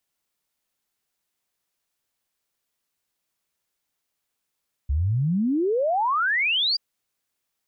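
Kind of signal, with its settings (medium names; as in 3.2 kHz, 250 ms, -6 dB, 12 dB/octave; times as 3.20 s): log sweep 65 Hz -> 4.9 kHz 1.88 s -19.5 dBFS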